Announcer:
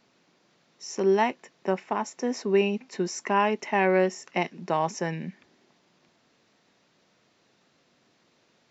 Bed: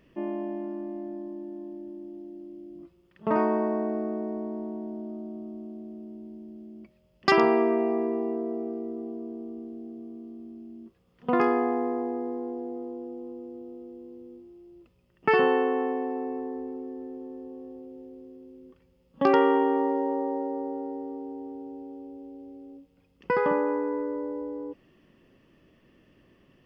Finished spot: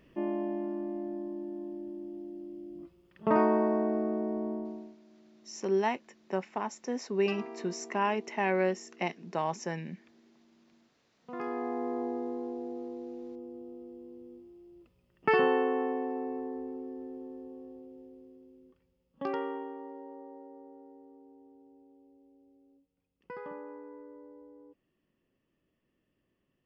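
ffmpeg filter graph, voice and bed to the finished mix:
ffmpeg -i stem1.wav -i stem2.wav -filter_complex "[0:a]adelay=4650,volume=-6dB[link_01];[1:a]volume=18dB,afade=type=out:start_time=4.51:duration=0.45:silence=0.0841395,afade=type=in:start_time=11.27:duration=0.78:silence=0.11885,afade=type=out:start_time=17.2:duration=2.56:silence=0.177828[link_02];[link_01][link_02]amix=inputs=2:normalize=0" out.wav

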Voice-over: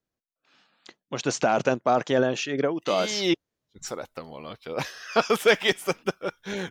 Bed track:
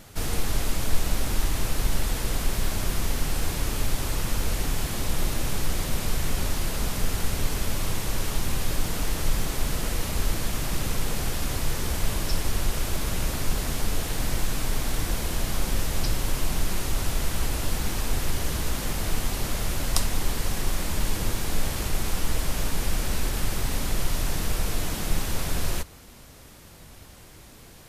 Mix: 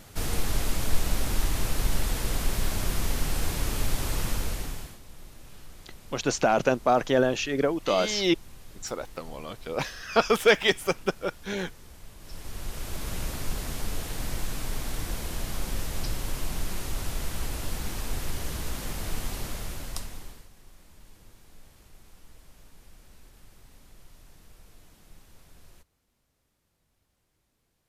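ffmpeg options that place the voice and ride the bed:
ffmpeg -i stem1.wav -i stem2.wav -filter_complex "[0:a]adelay=5000,volume=0dB[link_01];[1:a]volume=14.5dB,afade=type=out:start_time=4.25:duration=0.74:silence=0.1,afade=type=in:start_time=12.18:duration=0.96:silence=0.158489,afade=type=out:start_time=19.35:duration=1.13:silence=0.0841395[link_02];[link_01][link_02]amix=inputs=2:normalize=0" out.wav

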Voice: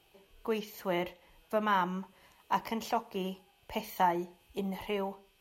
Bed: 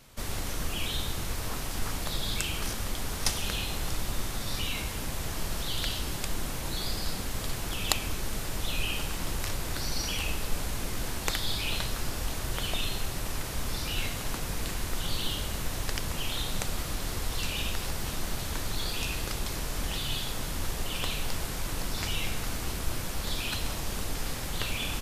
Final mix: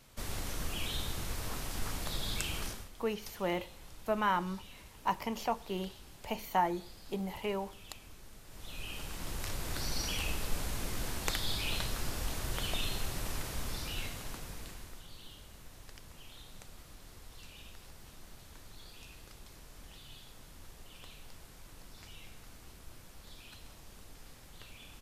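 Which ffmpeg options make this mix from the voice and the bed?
ffmpeg -i stem1.wav -i stem2.wav -filter_complex "[0:a]adelay=2550,volume=-1.5dB[link_01];[1:a]volume=11.5dB,afade=type=out:start_time=2.59:duration=0.3:silence=0.16788,afade=type=in:start_time=8.45:duration=1.36:silence=0.149624,afade=type=out:start_time=13.3:duration=1.76:silence=0.158489[link_02];[link_01][link_02]amix=inputs=2:normalize=0" out.wav

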